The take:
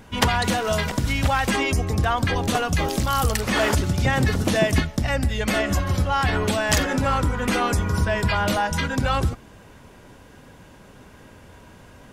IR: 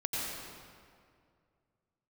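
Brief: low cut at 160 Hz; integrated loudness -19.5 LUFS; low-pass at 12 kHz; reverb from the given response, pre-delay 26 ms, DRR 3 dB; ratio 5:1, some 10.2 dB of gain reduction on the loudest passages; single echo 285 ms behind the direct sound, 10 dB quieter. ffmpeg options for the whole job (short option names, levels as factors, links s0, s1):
-filter_complex "[0:a]highpass=160,lowpass=12000,acompressor=threshold=0.0447:ratio=5,aecho=1:1:285:0.316,asplit=2[s0][s1];[1:a]atrim=start_sample=2205,adelay=26[s2];[s1][s2]afir=irnorm=-1:irlink=0,volume=0.376[s3];[s0][s3]amix=inputs=2:normalize=0,volume=2.66"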